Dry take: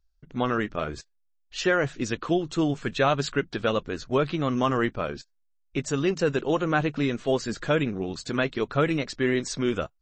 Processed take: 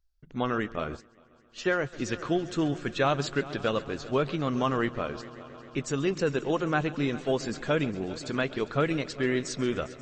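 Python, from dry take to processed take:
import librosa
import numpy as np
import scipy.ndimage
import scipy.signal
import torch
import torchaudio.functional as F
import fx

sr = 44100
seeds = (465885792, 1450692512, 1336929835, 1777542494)

y = fx.echo_heads(x, sr, ms=134, heads='first and third', feedback_pct=70, wet_db=-19)
y = fx.upward_expand(y, sr, threshold_db=-44.0, expansion=1.5, at=(0.95, 1.92), fade=0.02)
y = y * librosa.db_to_amplitude(-3.0)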